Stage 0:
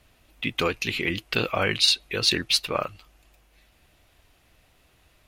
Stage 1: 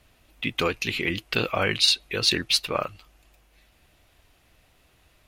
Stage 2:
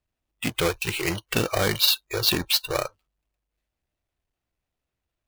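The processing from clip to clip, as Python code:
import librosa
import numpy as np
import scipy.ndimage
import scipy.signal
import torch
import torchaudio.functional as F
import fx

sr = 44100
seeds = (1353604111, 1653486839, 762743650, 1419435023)

y1 = x
y2 = fx.halfwave_hold(y1, sr)
y2 = fx.noise_reduce_blind(y2, sr, reduce_db=25)
y2 = y2 * librosa.db_to_amplitude(-3.0)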